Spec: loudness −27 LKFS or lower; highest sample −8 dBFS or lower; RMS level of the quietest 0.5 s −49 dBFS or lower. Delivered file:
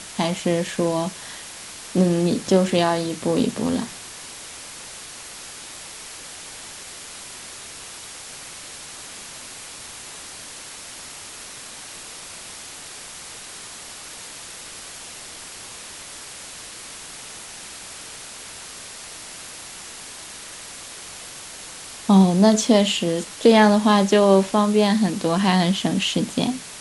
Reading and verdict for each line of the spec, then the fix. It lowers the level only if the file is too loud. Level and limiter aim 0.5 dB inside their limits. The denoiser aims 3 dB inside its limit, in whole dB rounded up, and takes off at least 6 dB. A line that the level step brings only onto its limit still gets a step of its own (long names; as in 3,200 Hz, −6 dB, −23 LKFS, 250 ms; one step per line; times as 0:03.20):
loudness −19.5 LKFS: out of spec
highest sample −3.0 dBFS: out of spec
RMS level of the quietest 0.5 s −38 dBFS: out of spec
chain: broadband denoise 6 dB, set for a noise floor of −38 dBFS
level −8 dB